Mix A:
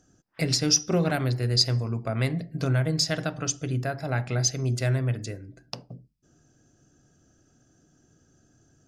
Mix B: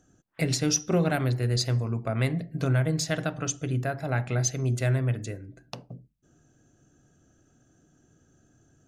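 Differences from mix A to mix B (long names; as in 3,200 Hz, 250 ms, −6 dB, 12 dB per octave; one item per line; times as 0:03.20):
background −4.5 dB
master: add parametric band 5,000 Hz −11 dB 0.32 octaves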